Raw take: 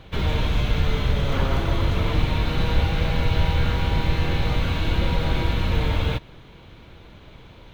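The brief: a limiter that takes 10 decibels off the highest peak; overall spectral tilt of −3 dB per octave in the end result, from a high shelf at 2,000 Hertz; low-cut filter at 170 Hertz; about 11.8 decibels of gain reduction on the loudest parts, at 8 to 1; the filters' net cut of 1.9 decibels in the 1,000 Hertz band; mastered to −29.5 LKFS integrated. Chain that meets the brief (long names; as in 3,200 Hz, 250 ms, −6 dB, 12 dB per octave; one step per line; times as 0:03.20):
high-pass filter 170 Hz
parametric band 1,000 Hz −3.5 dB
high-shelf EQ 2,000 Hz +4.5 dB
downward compressor 8 to 1, threshold −36 dBFS
level +14 dB
brickwall limiter −20.5 dBFS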